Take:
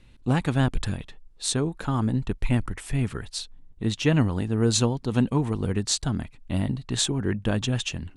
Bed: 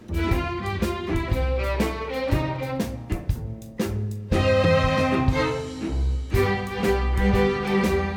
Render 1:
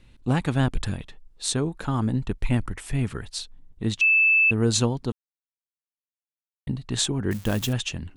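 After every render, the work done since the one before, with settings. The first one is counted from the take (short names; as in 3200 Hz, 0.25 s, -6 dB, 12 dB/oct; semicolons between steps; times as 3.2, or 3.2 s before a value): 4.01–4.51 bleep 2630 Hz -15 dBFS; 5.12–6.67 mute; 7.31–7.73 switching spikes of -26.5 dBFS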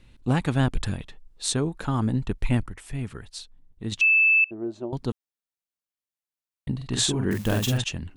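2.63–3.92 gain -6 dB; 4.44–4.93 double band-pass 470 Hz, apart 0.75 oct; 6.76–7.84 doubler 46 ms -3.5 dB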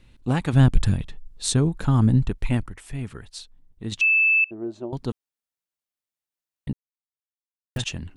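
0.53–2.29 tone controls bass +9 dB, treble +2 dB; 6.73–7.76 mute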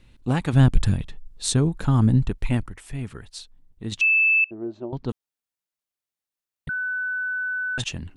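4.46–5.09 air absorption 150 m; 6.69–7.78 bleep 1500 Hz -24 dBFS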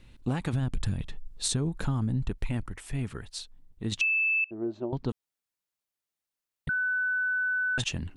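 limiter -13.5 dBFS, peak gain reduction 9.5 dB; compressor 6:1, threshold -25 dBFS, peak gain reduction 9 dB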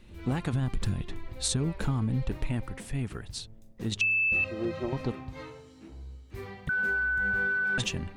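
add bed -20 dB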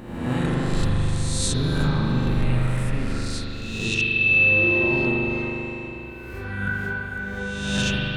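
spectral swells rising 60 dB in 1.06 s; spring tank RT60 3.7 s, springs 40 ms, chirp 50 ms, DRR -4 dB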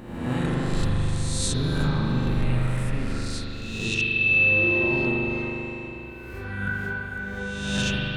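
gain -2 dB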